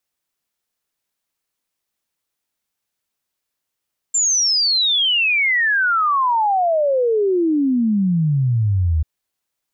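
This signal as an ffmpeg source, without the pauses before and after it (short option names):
-f lavfi -i "aevalsrc='0.2*clip(min(t,4.89-t)/0.01,0,1)*sin(2*PI*7400*4.89/log(75/7400)*(exp(log(75/7400)*t/4.89)-1))':d=4.89:s=44100"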